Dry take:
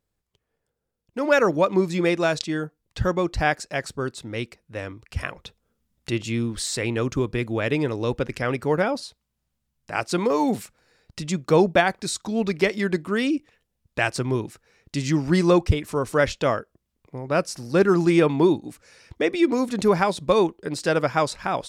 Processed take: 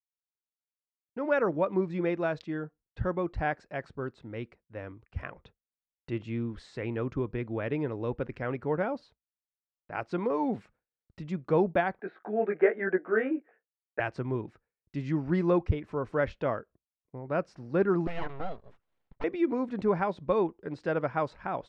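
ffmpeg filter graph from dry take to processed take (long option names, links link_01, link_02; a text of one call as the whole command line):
ffmpeg -i in.wav -filter_complex "[0:a]asettb=1/sr,asplit=3[link_01][link_02][link_03];[link_01]atrim=end=12.004[link_04];[link_02]atrim=start=12:end=14,asetpts=PTS-STARTPTS,afade=type=in:duration=0.004:curve=qsin,afade=type=out:start_time=1.996:duration=0.004:curve=qsin,flanger=delay=16:depth=3.2:speed=1.1,acontrast=85,highpass=frequency=260:width=0.5412,highpass=frequency=260:width=1.3066,equalizer=frequency=280:width_type=q:width=4:gain=-7,equalizer=frequency=430:width_type=q:width=4:gain=5,equalizer=frequency=720:width_type=q:width=4:gain=7,equalizer=frequency=1000:width_type=q:width=4:gain=-8,equalizer=frequency=1600:width_type=q:width=4:gain=9,lowpass=frequency=2100:width=0.5412,lowpass=frequency=2100:width=1.3066[link_05];[link_03]atrim=start=13.996[link_06];[link_04][link_05]acrossfade=duration=0.004:curve1=hsin:curve2=qsin[link_07];[link_07][link_06]acrossfade=duration=0.004:curve1=qsin:curve2=hsin,asettb=1/sr,asplit=3[link_08][link_09][link_10];[link_08]atrim=end=18.074[link_11];[link_09]atrim=start=18.07:end=19.24,asetpts=PTS-STARTPTS,afade=type=in:duration=0.004:curve=qsin,afade=type=out:start_time=1.166:duration=0.004:curve=qsin,equalizer=frequency=280:width=0.53:gain=-8,aeval=exprs='abs(val(0))':channel_layout=same[link_12];[link_10]atrim=start=19.236[link_13];[link_11][link_12]acrossfade=duration=0.004:curve1=hsin:curve2=qsin[link_14];[link_14][link_13]acrossfade=duration=0.004:curve1=qsin:curve2=hsin,lowpass=1800,agate=range=-33dB:threshold=-44dB:ratio=3:detection=peak,bandreject=frequency=1200:width=29,volume=-7.5dB" out.wav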